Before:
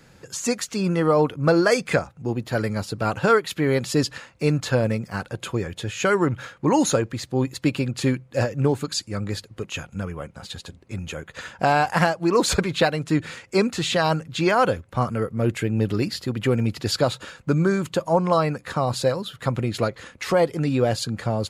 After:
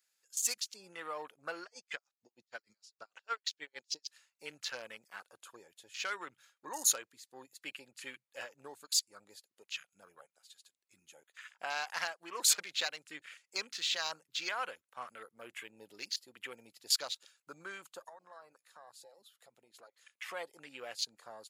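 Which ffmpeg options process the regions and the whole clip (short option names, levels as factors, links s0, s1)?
-filter_complex "[0:a]asettb=1/sr,asplit=3[s0][s1][s2];[s0]atrim=end=1.634[s3];[s1]atrim=start=1.63:end=4.08,asetpts=PTS-STARTPTS,afade=t=in:d=0.004:c=qsin,afade=t=out:st=2.446:d=0.004:c=qsin,lowpass=f=5800:t=q:w=2,aeval=exprs='val(0)*pow(10,-34*(0.5-0.5*cos(2*PI*6.5*n/s))/20)':c=same[s4];[s2]atrim=start=4.076[s5];[s3][s4]acrossfade=d=0.004:c1=hsin:c2=qsin[s6];[s6][s5]acrossfade=d=0.004:c1=qsin:c2=hsin,asettb=1/sr,asplit=3[s7][s8][s9];[s7]atrim=end=18.094[s10];[s8]atrim=start=18.09:end=19.98,asetpts=PTS-STARTPTS,afade=t=in:d=0.004:c=qsin,afade=t=out:st=1.886:d=0.004:c=qsin,equalizer=f=690:t=o:w=1.3:g=4.5,acompressor=threshold=0.02:ratio=3:attack=3.2:release=140:knee=1:detection=peak[s11];[s9]atrim=start=19.976[s12];[s10][s11]acrossfade=d=0.004:c1=hsin:c2=qsin[s13];[s13][s12]acrossfade=d=0.004:c1=qsin:c2=hsin,highpass=f=550:p=1,afwtdn=0.0178,aderivative"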